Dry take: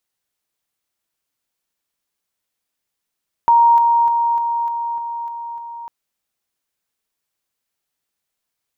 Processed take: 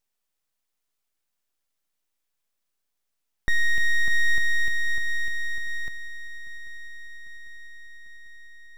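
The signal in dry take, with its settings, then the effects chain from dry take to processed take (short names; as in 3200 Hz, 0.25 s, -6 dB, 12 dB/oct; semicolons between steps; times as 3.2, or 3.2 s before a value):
level ladder 936 Hz -8 dBFS, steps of -3 dB, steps 8, 0.30 s 0.00 s
limiter -14.5 dBFS; full-wave rectifier; swung echo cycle 0.797 s, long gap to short 3:1, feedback 67%, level -22 dB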